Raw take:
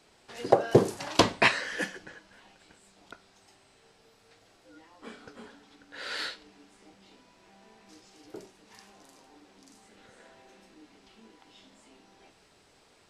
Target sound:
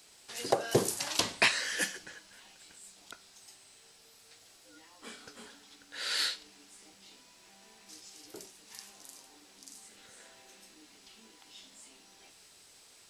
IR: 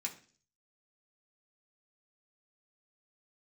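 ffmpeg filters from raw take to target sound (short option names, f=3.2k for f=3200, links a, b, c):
-af "crystalizer=i=6:c=0,alimiter=limit=-6.5dB:level=0:latency=1:release=204,volume=-6dB"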